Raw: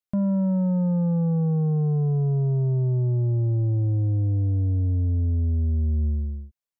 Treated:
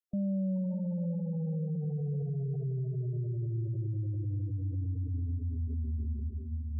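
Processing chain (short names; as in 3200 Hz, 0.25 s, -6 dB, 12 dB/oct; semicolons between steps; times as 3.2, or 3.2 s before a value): diffused feedback echo 0.566 s, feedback 42%, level -5.5 dB; limiter -21 dBFS, peak gain reduction 8.5 dB; spectral gate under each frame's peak -25 dB strong; gain -8 dB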